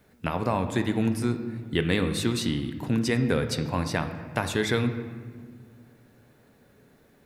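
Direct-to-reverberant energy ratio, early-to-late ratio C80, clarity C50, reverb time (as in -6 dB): 7.5 dB, 11.0 dB, 9.5 dB, 1.8 s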